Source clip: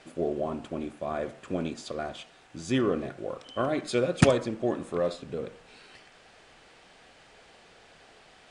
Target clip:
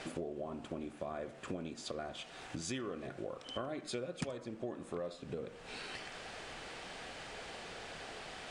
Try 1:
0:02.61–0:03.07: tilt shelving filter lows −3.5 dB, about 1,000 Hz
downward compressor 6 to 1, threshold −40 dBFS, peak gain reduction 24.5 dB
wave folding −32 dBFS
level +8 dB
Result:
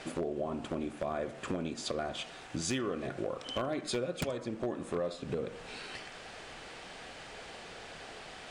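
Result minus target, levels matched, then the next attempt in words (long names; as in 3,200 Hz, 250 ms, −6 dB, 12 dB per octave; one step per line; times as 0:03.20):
downward compressor: peak gain reduction −6.5 dB
0:02.61–0:03.07: tilt shelving filter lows −3.5 dB, about 1,000 Hz
downward compressor 6 to 1, threshold −48 dBFS, peak gain reduction 31.5 dB
wave folding −32 dBFS
level +8 dB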